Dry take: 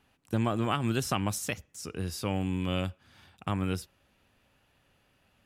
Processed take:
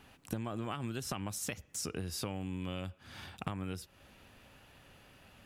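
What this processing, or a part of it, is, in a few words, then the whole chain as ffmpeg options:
serial compression, leveller first: -af "acompressor=threshold=-32dB:ratio=2,acompressor=threshold=-45dB:ratio=6,volume=9dB"

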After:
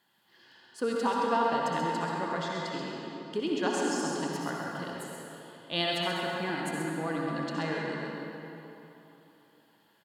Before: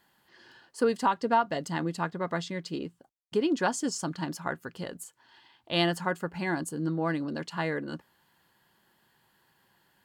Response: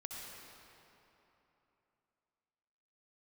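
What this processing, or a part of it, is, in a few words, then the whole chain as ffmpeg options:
PA in a hall: -filter_complex "[0:a]highpass=110,equalizer=f=3.4k:t=o:w=0.63:g=5,aecho=1:1:132:0.447[a];[1:a]atrim=start_sample=2205[b];[a][b]afir=irnorm=-1:irlink=0"

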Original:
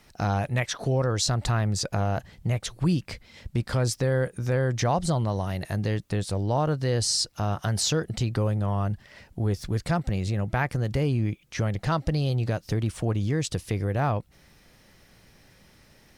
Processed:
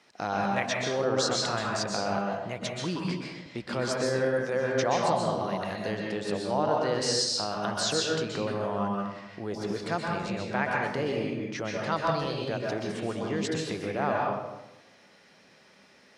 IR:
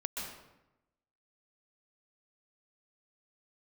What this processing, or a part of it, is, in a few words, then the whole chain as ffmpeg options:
supermarket ceiling speaker: -filter_complex "[0:a]highpass=290,lowpass=6.3k[a];[1:a]atrim=start_sample=2205[b];[a][b]afir=irnorm=-1:irlink=0"

